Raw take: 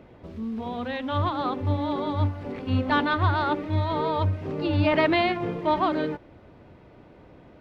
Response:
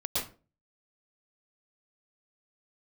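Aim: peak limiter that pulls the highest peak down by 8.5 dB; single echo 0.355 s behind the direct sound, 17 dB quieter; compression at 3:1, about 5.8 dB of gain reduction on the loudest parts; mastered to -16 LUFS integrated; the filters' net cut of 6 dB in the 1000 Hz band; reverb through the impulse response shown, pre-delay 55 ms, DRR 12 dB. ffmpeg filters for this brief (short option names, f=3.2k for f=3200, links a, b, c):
-filter_complex "[0:a]equalizer=f=1k:t=o:g=-7.5,acompressor=threshold=-27dB:ratio=3,alimiter=level_in=1.5dB:limit=-24dB:level=0:latency=1,volume=-1.5dB,aecho=1:1:355:0.141,asplit=2[a][b];[1:a]atrim=start_sample=2205,adelay=55[c];[b][c]afir=irnorm=-1:irlink=0,volume=-18dB[d];[a][d]amix=inputs=2:normalize=0,volume=17.5dB"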